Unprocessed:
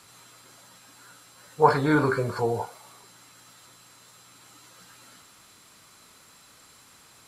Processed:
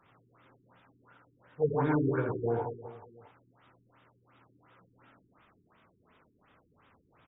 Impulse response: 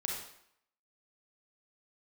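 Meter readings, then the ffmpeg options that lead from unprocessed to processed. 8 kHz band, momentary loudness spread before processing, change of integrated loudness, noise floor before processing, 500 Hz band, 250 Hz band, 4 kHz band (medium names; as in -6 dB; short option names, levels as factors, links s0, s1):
under -35 dB, 11 LU, -7.0 dB, -55 dBFS, -5.5 dB, -5.0 dB, under -20 dB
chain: -filter_complex "[0:a]highshelf=f=2100:g=-6.5,asplit=2[s0][s1];[s1]aecho=0:1:60|144|261.6|426.2|656.7:0.631|0.398|0.251|0.158|0.1[s2];[s0][s2]amix=inputs=2:normalize=0,afftfilt=real='re*lt(b*sr/1024,410*pow(3800/410,0.5+0.5*sin(2*PI*2.8*pts/sr)))':imag='im*lt(b*sr/1024,410*pow(3800/410,0.5+0.5*sin(2*PI*2.8*pts/sr)))':win_size=1024:overlap=0.75,volume=0.473"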